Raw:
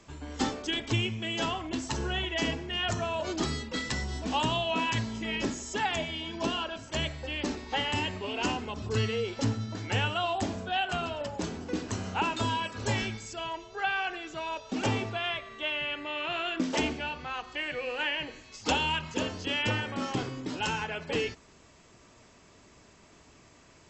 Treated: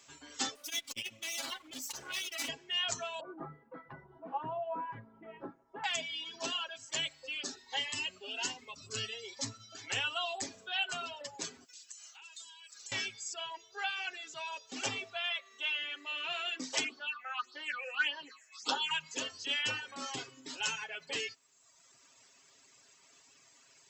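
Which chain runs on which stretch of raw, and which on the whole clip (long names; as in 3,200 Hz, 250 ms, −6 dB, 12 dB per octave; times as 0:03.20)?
0:00.55–0:02.49: lower of the sound and its delayed copy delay 3.5 ms + notch filter 1,700 Hz, Q 16 + saturating transformer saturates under 350 Hz
0:03.20–0:05.84: low-pass filter 1,200 Hz 24 dB per octave + comb filter 6 ms, depth 53%
0:07.23–0:09.79: parametric band 300 Hz −4 dB 0.29 octaves + phaser whose notches keep moving one way rising 1.3 Hz
0:11.65–0:12.92: first difference + downward compressor, threshold −47 dBFS
0:15.29–0:16.12: high-pass filter 180 Hz 24 dB per octave + mains-hum notches 60/120/180/240/300/360/420/480 Hz
0:16.84–0:18.91: Butterworth high-pass 180 Hz + parametric band 1,300 Hz +13 dB 0.7 octaves + all-pass phaser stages 6, 1.7 Hz, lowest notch 270–2,400 Hz
whole clip: reverb reduction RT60 1.1 s; spectral tilt +4 dB per octave; comb filter 7.4 ms, depth 56%; level −8 dB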